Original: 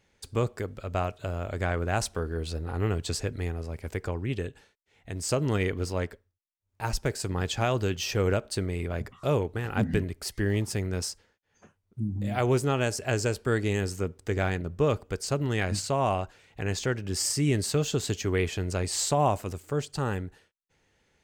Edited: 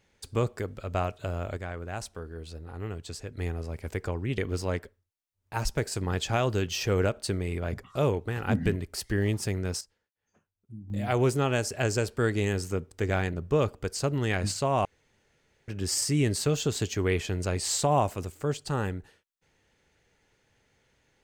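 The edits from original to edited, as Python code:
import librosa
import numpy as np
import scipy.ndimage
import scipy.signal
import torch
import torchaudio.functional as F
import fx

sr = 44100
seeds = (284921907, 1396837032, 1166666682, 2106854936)

y = fx.edit(x, sr, fx.fade_down_up(start_s=1.39, length_s=2.16, db=-8.5, fade_s=0.18, curve='log'),
    fx.cut(start_s=4.38, length_s=1.28),
    fx.fade_down_up(start_s=10.78, length_s=1.71, db=-12.5, fade_s=0.31, curve='log'),
    fx.room_tone_fill(start_s=16.13, length_s=0.83), tone=tone)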